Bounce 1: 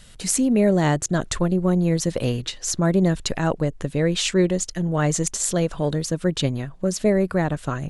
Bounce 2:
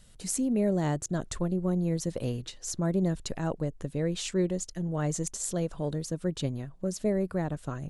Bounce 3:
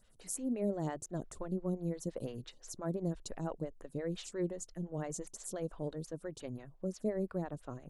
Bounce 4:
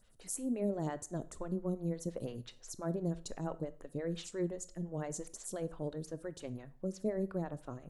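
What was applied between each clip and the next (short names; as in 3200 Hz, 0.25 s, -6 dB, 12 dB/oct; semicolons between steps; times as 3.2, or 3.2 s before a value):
bell 2300 Hz -6 dB 2.5 oct; gain -8 dB
photocell phaser 5.8 Hz; gain -5.5 dB
reverb RT60 0.45 s, pre-delay 18 ms, DRR 15 dB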